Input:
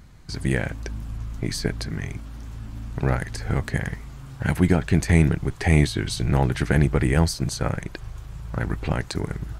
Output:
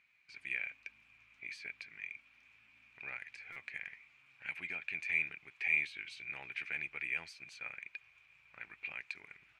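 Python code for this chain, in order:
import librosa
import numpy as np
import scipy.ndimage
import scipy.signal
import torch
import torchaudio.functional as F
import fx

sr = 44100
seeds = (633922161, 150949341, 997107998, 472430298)

y = fx.bandpass_q(x, sr, hz=2400.0, q=16.0)
y = fx.buffer_glitch(y, sr, at_s=(3.52,), block=256, repeats=6)
y = F.gain(torch.from_numpy(y), 5.0).numpy()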